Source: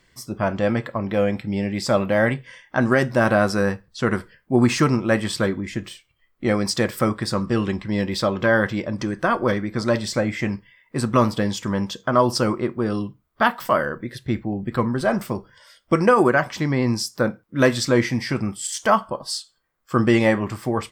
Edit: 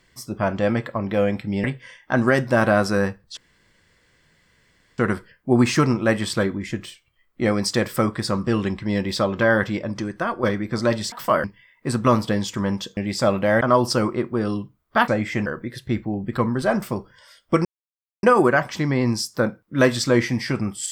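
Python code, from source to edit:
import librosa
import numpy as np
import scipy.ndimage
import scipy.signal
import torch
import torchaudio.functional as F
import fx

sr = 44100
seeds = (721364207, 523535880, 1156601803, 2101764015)

y = fx.edit(x, sr, fx.move(start_s=1.64, length_s=0.64, to_s=12.06),
    fx.insert_room_tone(at_s=4.01, length_s=1.61),
    fx.fade_out_to(start_s=8.77, length_s=0.69, floor_db=-6.5),
    fx.swap(start_s=10.15, length_s=0.38, other_s=13.53, other_length_s=0.32),
    fx.insert_silence(at_s=16.04, length_s=0.58), tone=tone)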